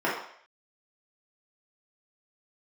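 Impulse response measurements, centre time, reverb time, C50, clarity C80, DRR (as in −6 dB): 45 ms, 0.60 s, 3.5 dB, 7.0 dB, −8.0 dB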